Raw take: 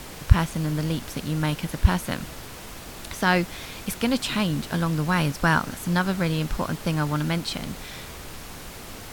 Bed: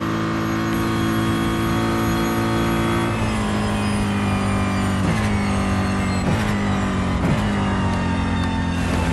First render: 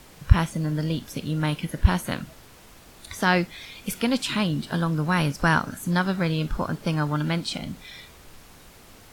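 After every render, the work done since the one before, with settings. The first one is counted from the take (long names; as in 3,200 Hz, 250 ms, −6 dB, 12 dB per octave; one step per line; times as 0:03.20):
noise reduction from a noise print 10 dB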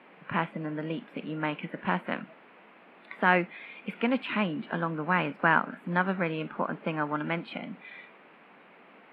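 elliptic band-pass filter 190–2,500 Hz, stop band 40 dB
low-shelf EQ 240 Hz −7.5 dB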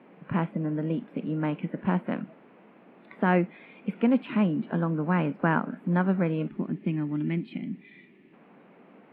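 0:06.48–0:08.33: gain on a spectral selection 430–1,700 Hz −14 dB
tilt shelving filter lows +8.5 dB, about 640 Hz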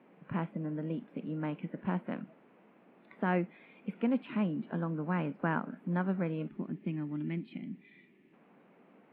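level −7.5 dB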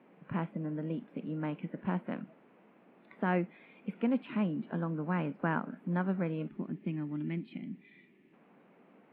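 no processing that can be heard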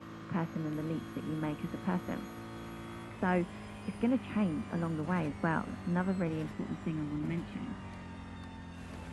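mix in bed −25 dB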